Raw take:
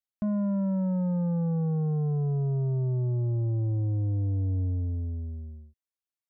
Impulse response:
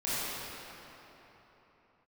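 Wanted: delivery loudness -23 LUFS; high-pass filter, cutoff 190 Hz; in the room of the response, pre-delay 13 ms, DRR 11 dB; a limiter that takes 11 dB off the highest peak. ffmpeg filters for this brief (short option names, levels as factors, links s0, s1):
-filter_complex "[0:a]highpass=190,alimiter=level_in=3.35:limit=0.0631:level=0:latency=1,volume=0.299,asplit=2[s0][s1];[1:a]atrim=start_sample=2205,adelay=13[s2];[s1][s2]afir=irnorm=-1:irlink=0,volume=0.1[s3];[s0][s3]amix=inputs=2:normalize=0,volume=7.94"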